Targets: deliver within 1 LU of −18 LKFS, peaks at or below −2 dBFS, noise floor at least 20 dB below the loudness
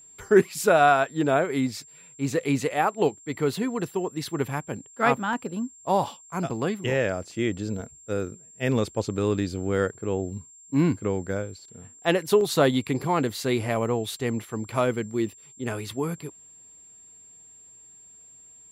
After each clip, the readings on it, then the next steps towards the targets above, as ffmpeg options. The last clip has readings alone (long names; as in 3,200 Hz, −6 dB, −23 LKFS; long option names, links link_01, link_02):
interfering tone 7,400 Hz; level of the tone −48 dBFS; integrated loudness −26.0 LKFS; sample peak −6.5 dBFS; target loudness −18.0 LKFS
→ -af "bandreject=frequency=7400:width=30"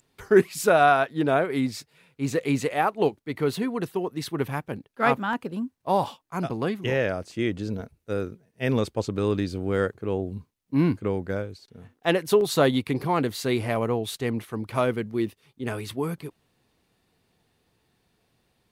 interfering tone none found; integrated loudness −26.0 LKFS; sample peak −7.0 dBFS; target loudness −18.0 LKFS
→ -af "volume=8dB,alimiter=limit=-2dB:level=0:latency=1"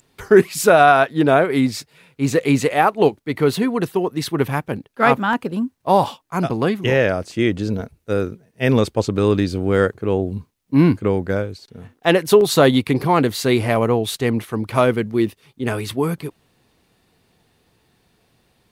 integrated loudness −18.5 LKFS; sample peak −2.0 dBFS; background noise floor −63 dBFS